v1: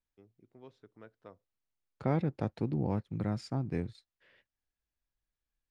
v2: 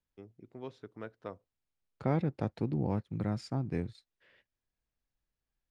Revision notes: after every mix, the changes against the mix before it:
first voice +9.5 dB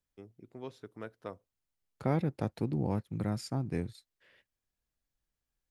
master: remove high-frequency loss of the air 87 metres

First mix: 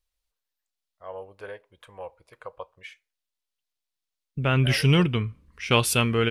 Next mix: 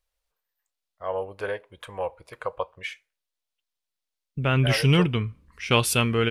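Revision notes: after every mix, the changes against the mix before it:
first voice +9.0 dB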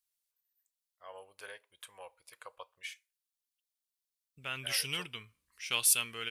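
master: add first-order pre-emphasis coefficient 0.97

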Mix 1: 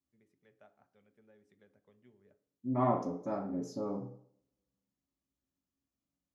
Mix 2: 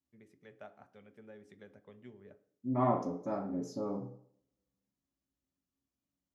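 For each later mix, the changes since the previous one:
first voice +11.0 dB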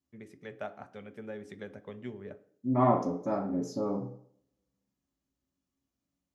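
first voice +11.5 dB
second voice +5.0 dB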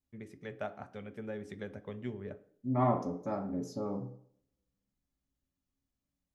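second voice: send −6.0 dB
master: remove high-pass filter 150 Hz 6 dB per octave

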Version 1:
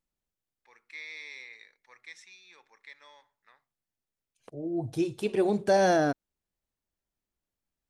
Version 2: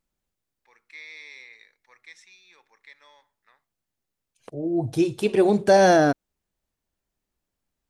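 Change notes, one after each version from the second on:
second voice +7.0 dB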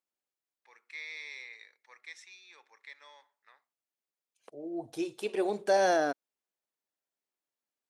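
second voice −8.5 dB
master: add high-pass filter 390 Hz 12 dB per octave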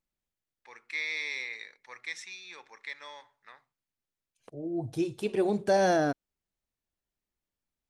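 first voice +9.0 dB
master: remove high-pass filter 390 Hz 12 dB per octave

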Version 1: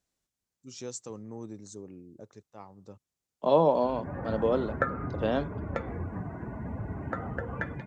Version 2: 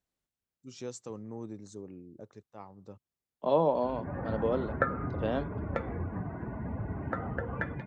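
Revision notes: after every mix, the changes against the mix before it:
second voice −3.5 dB
master: add parametric band 6,800 Hz −7 dB 1.2 octaves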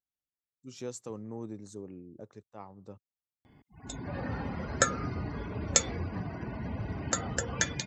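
first voice: remove Chebyshev low-pass filter 6,600 Hz, order 2
second voice: muted
background: remove low-pass filter 1,700 Hz 24 dB per octave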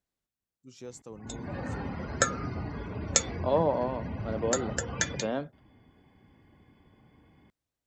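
first voice −4.5 dB
second voice: unmuted
background: entry −2.60 s

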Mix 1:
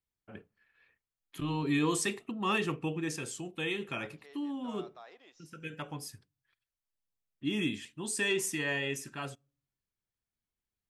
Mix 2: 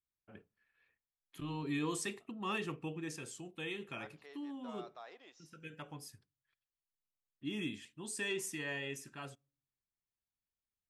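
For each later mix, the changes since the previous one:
first voice −7.5 dB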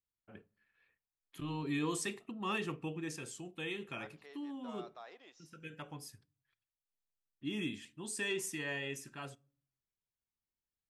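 first voice: send +9.5 dB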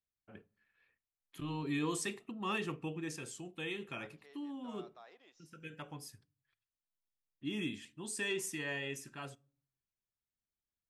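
second voice −5.0 dB

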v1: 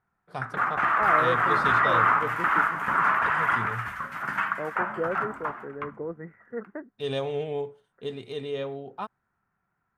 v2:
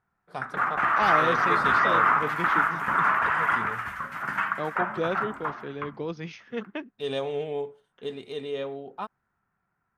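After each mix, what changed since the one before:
first voice: add parametric band 120 Hz −10.5 dB 0.47 octaves
second voice: remove Chebyshev low-pass with heavy ripple 2,000 Hz, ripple 6 dB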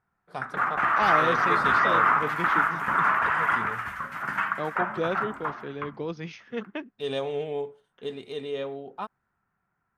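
nothing changed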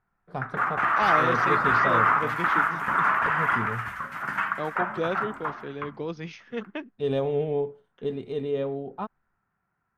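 first voice: add spectral tilt −3.5 dB per octave

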